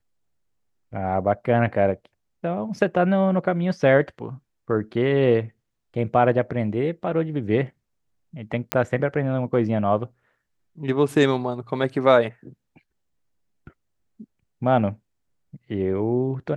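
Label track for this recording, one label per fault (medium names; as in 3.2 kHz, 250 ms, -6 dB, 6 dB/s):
8.720000	8.720000	pop -4 dBFS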